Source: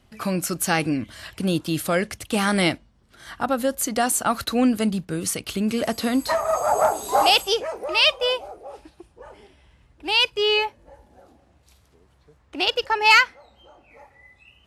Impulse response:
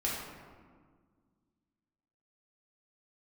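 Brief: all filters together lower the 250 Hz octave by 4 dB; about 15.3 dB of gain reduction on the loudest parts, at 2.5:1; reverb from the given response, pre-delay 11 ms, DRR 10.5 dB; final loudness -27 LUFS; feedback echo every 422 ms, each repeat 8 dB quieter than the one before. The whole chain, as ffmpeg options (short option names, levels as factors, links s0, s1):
-filter_complex "[0:a]equalizer=f=250:t=o:g=-5,acompressor=threshold=0.02:ratio=2.5,aecho=1:1:422|844|1266|1688|2110:0.398|0.159|0.0637|0.0255|0.0102,asplit=2[s0][s1];[1:a]atrim=start_sample=2205,adelay=11[s2];[s1][s2]afir=irnorm=-1:irlink=0,volume=0.15[s3];[s0][s3]amix=inputs=2:normalize=0,volume=1.88"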